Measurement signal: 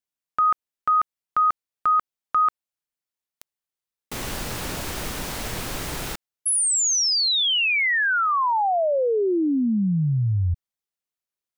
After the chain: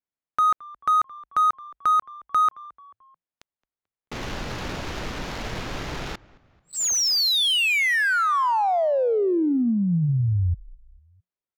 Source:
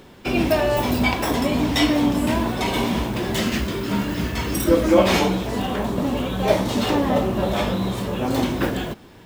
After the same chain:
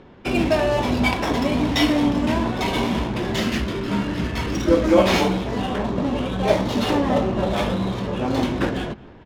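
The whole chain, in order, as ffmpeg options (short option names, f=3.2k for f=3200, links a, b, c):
-filter_complex "[0:a]aresample=16000,aresample=44100,asplit=4[a][b][c][d];[b]adelay=219,afreqshift=-60,volume=-21.5dB[e];[c]adelay=438,afreqshift=-120,volume=-28.2dB[f];[d]adelay=657,afreqshift=-180,volume=-35dB[g];[a][e][f][g]amix=inputs=4:normalize=0,adynamicsmooth=sensitivity=7.5:basefreq=2.3k"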